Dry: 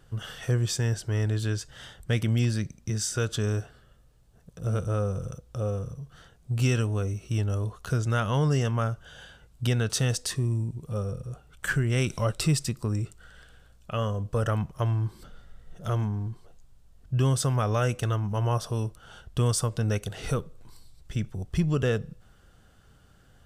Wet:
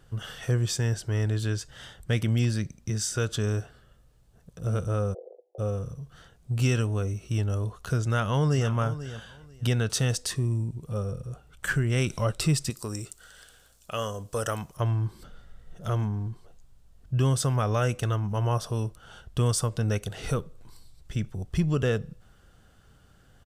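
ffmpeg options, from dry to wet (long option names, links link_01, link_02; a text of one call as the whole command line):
ffmpeg -i in.wav -filter_complex "[0:a]asplit=3[link_01][link_02][link_03];[link_01]afade=type=out:start_time=5.13:duration=0.02[link_04];[link_02]asuperpass=centerf=540:order=12:qfactor=1.2,afade=type=in:start_time=5.13:duration=0.02,afade=type=out:start_time=5.58:duration=0.02[link_05];[link_03]afade=type=in:start_time=5.58:duration=0.02[link_06];[link_04][link_05][link_06]amix=inputs=3:normalize=0,asplit=2[link_07][link_08];[link_08]afade=type=in:start_time=8.04:duration=0.01,afade=type=out:start_time=8.7:duration=0.01,aecho=0:1:490|980:0.223872|0.0447744[link_09];[link_07][link_09]amix=inputs=2:normalize=0,asettb=1/sr,asplit=3[link_10][link_11][link_12];[link_10]atrim=end=12.704[link_13];[link_11]atrim=start=12.7:end=14.77,asetpts=PTS-STARTPTS,afade=type=in:duration=0.004:curve=qsin,afade=type=out:start_time=2.066:duration=0.004:curve=qsin,bass=frequency=250:gain=-9,treble=frequency=4000:gain=12[link_14];[link_12]atrim=start=14.766[link_15];[link_13][link_14]acrossfade=duration=0.004:curve1=hsin:curve2=qsin[link_16];[link_16][link_15]acrossfade=duration=0.004:curve1=qsin:curve2=hsin" out.wav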